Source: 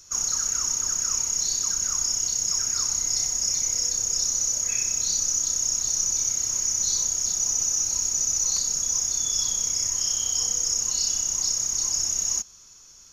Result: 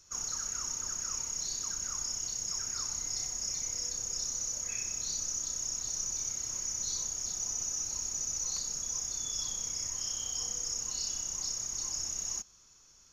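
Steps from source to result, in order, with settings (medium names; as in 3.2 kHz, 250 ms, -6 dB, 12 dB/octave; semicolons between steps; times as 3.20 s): treble shelf 5.1 kHz -7 dB; trim -6.5 dB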